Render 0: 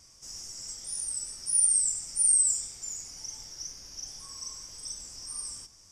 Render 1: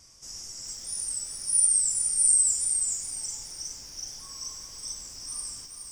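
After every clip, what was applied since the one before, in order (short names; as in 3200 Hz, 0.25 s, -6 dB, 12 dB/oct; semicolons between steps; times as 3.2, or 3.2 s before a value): lo-fi delay 0.419 s, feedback 35%, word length 9-bit, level -6 dB; gain +1.5 dB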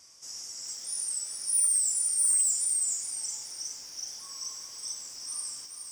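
soft clip -19.5 dBFS, distortion -13 dB; HPF 490 Hz 6 dB/oct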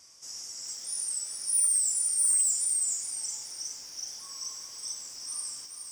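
nothing audible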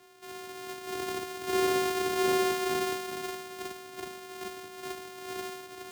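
sample sorter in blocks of 128 samples; frequency shift +33 Hz; gain -1.5 dB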